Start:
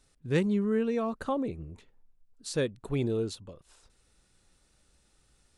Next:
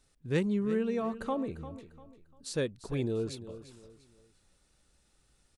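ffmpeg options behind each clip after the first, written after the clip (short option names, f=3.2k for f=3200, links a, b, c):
-af "aecho=1:1:347|694|1041:0.2|0.0658|0.0217,volume=-2.5dB"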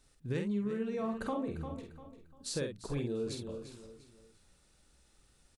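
-filter_complex "[0:a]acompressor=threshold=-34dB:ratio=6,asplit=2[a][b];[b]adelay=49,volume=-5dB[c];[a][c]amix=inputs=2:normalize=0,volume=1dB"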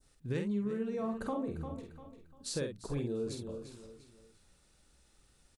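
-af "adynamicequalizer=threshold=0.00126:dfrequency=2700:dqfactor=0.8:tfrequency=2700:tqfactor=0.8:attack=5:release=100:ratio=0.375:range=3:mode=cutabove:tftype=bell"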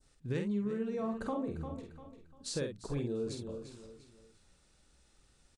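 -af "lowpass=f=9.4k:w=0.5412,lowpass=f=9.4k:w=1.3066"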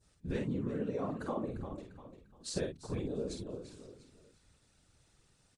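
-af "afftfilt=real='hypot(re,im)*cos(2*PI*random(0))':imag='hypot(re,im)*sin(2*PI*random(1))':win_size=512:overlap=0.75,volume=5dB" -ar 32000 -c:a aac -b:a 96k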